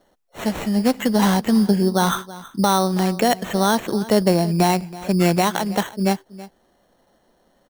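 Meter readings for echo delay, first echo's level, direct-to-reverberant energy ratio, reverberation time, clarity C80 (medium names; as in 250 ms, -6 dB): 326 ms, -18.0 dB, no reverb, no reverb, no reverb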